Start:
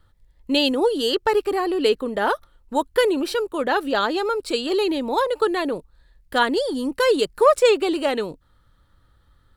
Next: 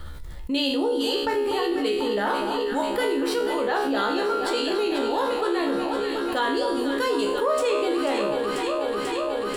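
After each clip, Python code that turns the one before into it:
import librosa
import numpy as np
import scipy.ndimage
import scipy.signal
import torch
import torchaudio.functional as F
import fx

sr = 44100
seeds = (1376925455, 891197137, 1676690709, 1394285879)

y = fx.comb_fb(x, sr, f0_hz=69.0, decay_s=0.52, harmonics='all', damping=0.0, mix_pct=90)
y = fx.echo_alternate(y, sr, ms=245, hz=1300.0, feedback_pct=86, wet_db=-8.5)
y = fx.env_flatten(y, sr, amount_pct=70)
y = y * librosa.db_to_amplitude(-1.0)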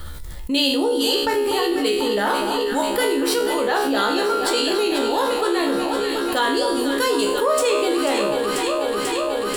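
y = fx.high_shelf(x, sr, hz=5200.0, db=11.0)
y = y * librosa.db_to_amplitude(3.5)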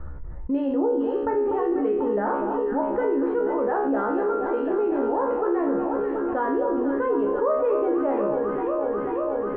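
y = scipy.signal.sosfilt(scipy.signal.bessel(6, 960.0, 'lowpass', norm='mag', fs=sr, output='sos'), x)
y = y * librosa.db_to_amplitude(-1.5)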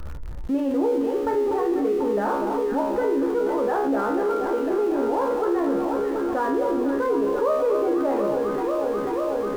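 y = x + 0.5 * 10.0 ** (-36.5 / 20.0) * np.sign(x)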